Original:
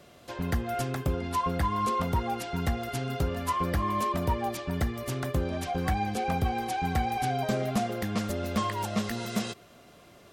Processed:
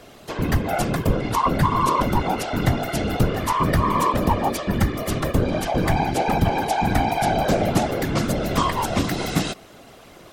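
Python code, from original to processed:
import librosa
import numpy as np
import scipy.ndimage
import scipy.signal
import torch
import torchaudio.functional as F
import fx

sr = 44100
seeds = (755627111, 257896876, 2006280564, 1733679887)

y = fx.whisperise(x, sr, seeds[0])
y = F.gain(torch.from_numpy(y), 8.5).numpy()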